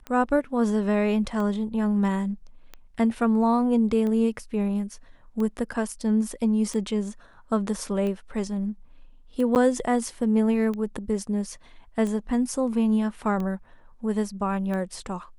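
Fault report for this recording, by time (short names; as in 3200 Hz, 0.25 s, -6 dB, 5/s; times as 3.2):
tick 45 rpm -21 dBFS
9.55–9.56 gap 9.5 ms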